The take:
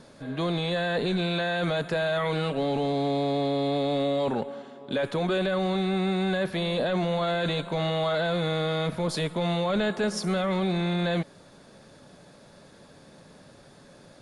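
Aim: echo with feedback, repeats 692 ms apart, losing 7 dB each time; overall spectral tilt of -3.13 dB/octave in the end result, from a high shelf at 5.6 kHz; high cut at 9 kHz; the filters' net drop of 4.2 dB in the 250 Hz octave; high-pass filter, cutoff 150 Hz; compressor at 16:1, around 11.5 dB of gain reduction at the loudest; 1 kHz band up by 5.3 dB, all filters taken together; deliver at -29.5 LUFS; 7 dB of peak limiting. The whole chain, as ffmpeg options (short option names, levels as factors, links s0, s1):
-af "highpass=150,lowpass=9000,equalizer=f=250:t=o:g=-5.5,equalizer=f=1000:t=o:g=8,highshelf=f=5600:g=4,acompressor=threshold=0.0251:ratio=16,alimiter=level_in=1.78:limit=0.0631:level=0:latency=1,volume=0.562,aecho=1:1:692|1384|2076|2768|3460:0.447|0.201|0.0905|0.0407|0.0183,volume=2.51"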